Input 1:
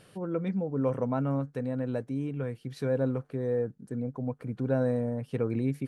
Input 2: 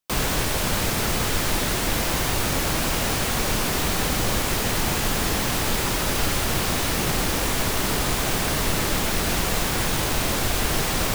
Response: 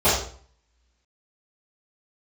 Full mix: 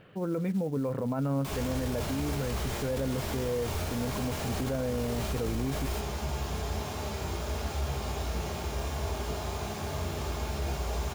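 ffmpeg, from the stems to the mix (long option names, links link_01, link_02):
-filter_complex "[0:a]lowpass=frequency=3000:width=0.5412,lowpass=frequency=3000:width=1.3066,acrusher=bits=7:mode=log:mix=0:aa=0.000001,volume=2.5dB,asplit=2[link_01][link_02];[1:a]flanger=delay=9.3:depth=8:regen=67:speed=0.36:shape=triangular,adelay=1350,volume=-12dB,asplit=2[link_03][link_04];[link_04]volume=-16.5dB[link_05];[link_02]apad=whole_len=551191[link_06];[link_03][link_06]sidechaingate=range=-33dB:threshold=-47dB:ratio=16:detection=peak[link_07];[2:a]atrim=start_sample=2205[link_08];[link_05][link_08]afir=irnorm=-1:irlink=0[link_09];[link_01][link_07][link_09]amix=inputs=3:normalize=0,alimiter=limit=-23dB:level=0:latency=1:release=13"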